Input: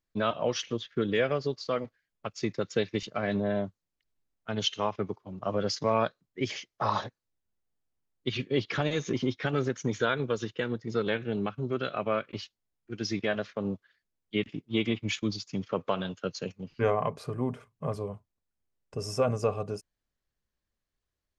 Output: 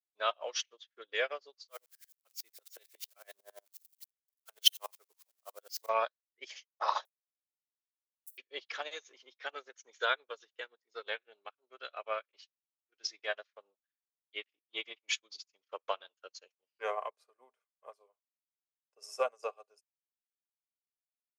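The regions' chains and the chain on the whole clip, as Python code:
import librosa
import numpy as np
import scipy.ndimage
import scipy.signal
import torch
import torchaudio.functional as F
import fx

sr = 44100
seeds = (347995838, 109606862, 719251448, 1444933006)

y = fx.chain(x, sr, fx.crossing_spikes(level_db=-29.0),
    fx.tremolo_decay(direction='swelling', hz=11.0, depth_db=21), at=(1.68, 5.89))
y = fx.chain(y, sr, fx.block_float(bits=3),
    fx.cheby2_highpass(hz=1800.0, order=4, stop_db=80), at=(7.05, 8.38))
y = scipy.signal.sosfilt(scipy.signal.butter(4, 500.0, 'highpass', fs=sr, output='sos'), y)
y = fx.tilt_eq(y, sr, slope=2.0)
y = fx.upward_expand(y, sr, threshold_db=-48.0, expansion=2.5)
y = y * 10.0 ** (4.0 / 20.0)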